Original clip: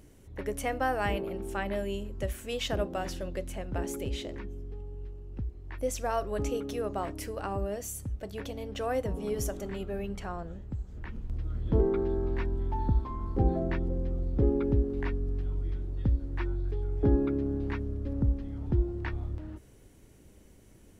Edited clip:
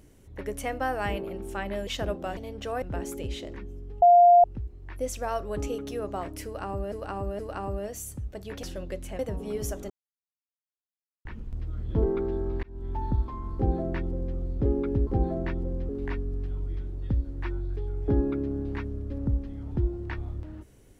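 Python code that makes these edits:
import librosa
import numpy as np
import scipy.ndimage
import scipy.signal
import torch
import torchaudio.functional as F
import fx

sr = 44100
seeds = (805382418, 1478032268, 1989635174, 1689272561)

y = fx.edit(x, sr, fx.cut(start_s=1.87, length_s=0.71),
    fx.swap(start_s=3.08, length_s=0.56, other_s=8.51, other_length_s=0.45),
    fx.bleep(start_s=4.84, length_s=0.42, hz=701.0, db=-12.0),
    fx.repeat(start_s=7.27, length_s=0.47, count=3),
    fx.silence(start_s=9.67, length_s=1.35),
    fx.fade_in_span(start_s=12.4, length_s=0.33),
    fx.duplicate(start_s=13.32, length_s=0.82, to_s=14.84), tone=tone)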